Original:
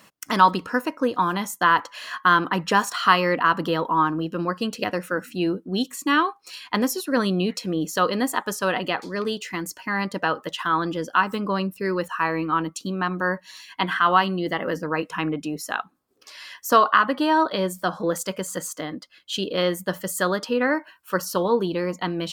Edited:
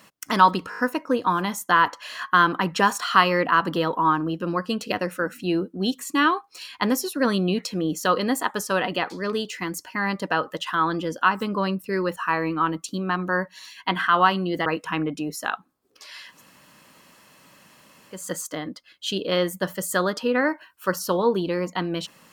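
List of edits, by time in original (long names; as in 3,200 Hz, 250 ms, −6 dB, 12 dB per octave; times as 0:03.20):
0:00.70: stutter 0.02 s, 5 plays
0:14.58–0:14.92: remove
0:16.56–0:18.44: fill with room tone, crossfade 0.24 s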